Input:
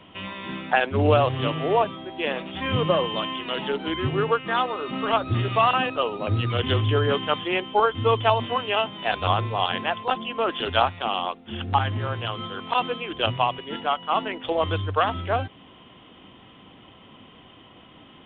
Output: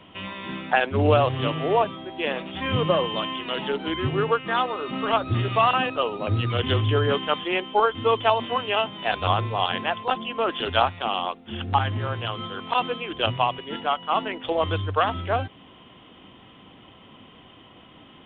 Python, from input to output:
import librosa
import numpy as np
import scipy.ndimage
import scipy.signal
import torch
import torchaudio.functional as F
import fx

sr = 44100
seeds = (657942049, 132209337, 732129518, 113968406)

y = fx.peak_eq(x, sr, hz=110.0, db=-9.5, octaves=0.72, at=(7.18, 8.53))